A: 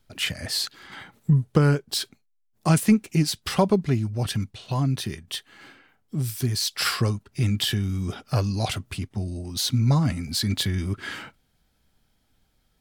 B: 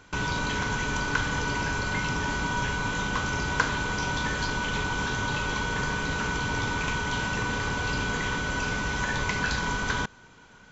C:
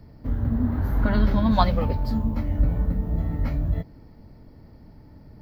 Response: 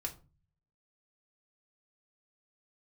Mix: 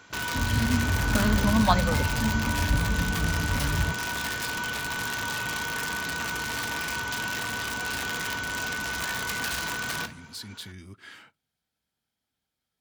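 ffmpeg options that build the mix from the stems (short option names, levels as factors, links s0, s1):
-filter_complex "[0:a]volume=0.178,asplit=2[s0][s1];[s1]volume=0.126[s2];[1:a]aeval=exprs='(mod(10.6*val(0)+1,2)-1)/10.6':c=same,volume=0.708,asplit=2[s3][s4];[s4]volume=0.562[s5];[2:a]lowshelf=f=160:g=9,adelay=100,volume=0.794[s6];[s0][s3]amix=inputs=2:normalize=0,alimiter=level_in=2.37:limit=0.0631:level=0:latency=1,volume=0.422,volume=1[s7];[3:a]atrim=start_sample=2205[s8];[s2][s5]amix=inputs=2:normalize=0[s9];[s9][s8]afir=irnorm=-1:irlink=0[s10];[s6][s7][s10]amix=inputs=3:normalize=0,highpass=83,tiltshelf=f=680:g=-3"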